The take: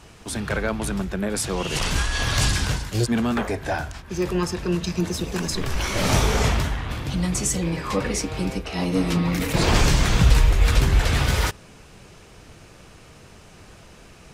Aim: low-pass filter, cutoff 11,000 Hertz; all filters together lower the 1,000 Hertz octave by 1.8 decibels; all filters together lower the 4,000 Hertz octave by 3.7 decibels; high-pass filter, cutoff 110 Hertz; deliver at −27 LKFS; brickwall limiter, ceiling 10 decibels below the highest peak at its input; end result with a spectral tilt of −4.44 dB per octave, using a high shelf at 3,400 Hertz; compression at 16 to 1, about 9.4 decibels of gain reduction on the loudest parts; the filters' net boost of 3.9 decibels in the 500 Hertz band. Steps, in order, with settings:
high-pass filter 110 Hz
low-pass filter 11,000 Hz
parametric band 500 Hz +6 dB
parametric band 1,000 Hz −4.5 dB
high-shelf EQ 3,400 Hz +5 dB
parametric band 4,000 Hz −8.5 dB
downward compressor 16 to 1, threshold −24 dBFS
level +6.5 dB
brickwall limiter −18 dBFS

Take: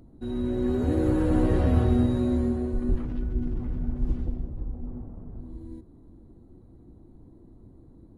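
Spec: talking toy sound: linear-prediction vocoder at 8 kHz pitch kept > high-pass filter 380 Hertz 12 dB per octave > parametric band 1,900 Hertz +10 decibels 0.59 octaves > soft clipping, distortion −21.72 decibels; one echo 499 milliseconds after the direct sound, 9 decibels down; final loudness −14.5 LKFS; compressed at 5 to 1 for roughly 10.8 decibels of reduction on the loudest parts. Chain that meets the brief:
downward compressor 5 to 1, threshold −30 dBFS
single-tap delay 499 ms −9 dB
linear-prediction vocoder at 8 kHz pitch kept
high-pass filter 380 Hz 12 dB per octave
parametric band 1,900 Hz +10 dB 0.59 octaves
soft clipping −30 dBFS
level +29 dB

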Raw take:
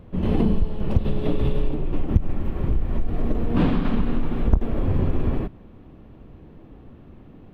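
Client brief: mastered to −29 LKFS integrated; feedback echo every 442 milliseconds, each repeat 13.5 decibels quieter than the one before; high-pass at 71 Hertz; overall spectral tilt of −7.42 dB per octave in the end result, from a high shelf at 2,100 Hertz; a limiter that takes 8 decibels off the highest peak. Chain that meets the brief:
high-pass filter 71 Hz
high-shelf EQ 2,100 Hz −7.5 dB
brickwall limiter −17 dBFS
repeating echo 442 ms, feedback 21%, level −13.5 dB
level −0.5 dB

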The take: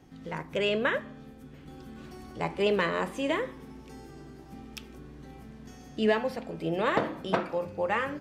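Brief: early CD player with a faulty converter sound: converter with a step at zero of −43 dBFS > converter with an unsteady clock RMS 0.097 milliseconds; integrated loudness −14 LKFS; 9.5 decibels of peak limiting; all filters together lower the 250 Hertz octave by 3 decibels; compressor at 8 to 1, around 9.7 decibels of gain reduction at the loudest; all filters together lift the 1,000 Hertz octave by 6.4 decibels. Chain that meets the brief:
parametric band 250 Hz −4.5 dB
parametric band 1,000 Hz +8 dB
downward compressor 8 to 1, threshold −28 dBFS
brickwall limiter −25 dBFS
converter with a step at zero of −43 dBFS
converter with an unsteady clock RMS 0.097 ms
level +22 dB

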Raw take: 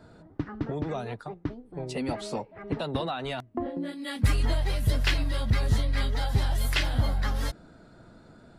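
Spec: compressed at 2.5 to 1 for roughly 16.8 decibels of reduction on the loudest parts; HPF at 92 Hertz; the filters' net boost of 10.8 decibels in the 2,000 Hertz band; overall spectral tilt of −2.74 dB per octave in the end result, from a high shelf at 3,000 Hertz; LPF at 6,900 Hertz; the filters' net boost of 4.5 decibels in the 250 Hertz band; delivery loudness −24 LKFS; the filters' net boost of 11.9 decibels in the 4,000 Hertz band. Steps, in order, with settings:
high-pass filter 92 Hz
low-pass filter 6,900 Hz
parametric band 250 Hz +5.5 dB
parametric band 2,000 Hz +8.5 dB
high-shelf EQ 3,000 Hz +6.5 dB
parametric band 4,000 Hz +7.5 dB
downward compressor 2.5 to 1, threshold −39 dBFS
level +13 dB

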